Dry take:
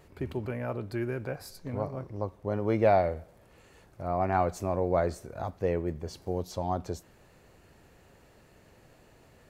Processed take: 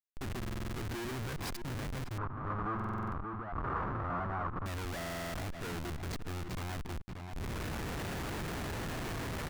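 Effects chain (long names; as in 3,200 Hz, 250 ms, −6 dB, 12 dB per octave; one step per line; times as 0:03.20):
camcorder AGC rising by 39 dB per second
mains-hum notches 60/120/180/240/300 Hz
comparator with hysteresis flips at −31.5 dBFS
parametric band 530 Hz −14 dB 0.63 octaves
slap from a distant wall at 100 metres, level −15 dB
soft clipping −38.5 dBFS, distortion −8 dB
brickwall limiter −42 dBFS, peak gain reduction 3.5 dB
0:02.18–0:04.66: low-pass with resonance 1,200 Hz, resonance Q 4.9
buffer that repeats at 0:00.38/0:02.75/0:04.97, samples 2,048, times 7
level +5 dB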